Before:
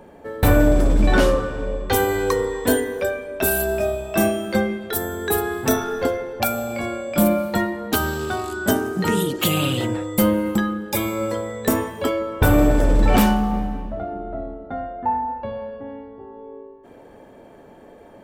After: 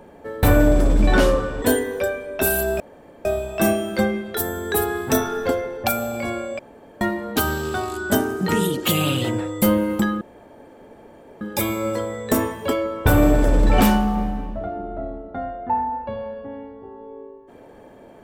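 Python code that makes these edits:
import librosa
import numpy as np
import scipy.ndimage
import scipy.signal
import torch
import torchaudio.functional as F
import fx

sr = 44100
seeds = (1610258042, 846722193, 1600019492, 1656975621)

y = fx.edit(x, sr, fx.cut(start_s=1.62, length_s=1.01),
    fx.insert_room_tone(at_s=3.81, length_s=0.45),
    fx.room_tone_fill(start_s=7.15, length_s=0.42),
    fx.insert_room_tone(at_s=10.77, length_s=1.2), tone=tone)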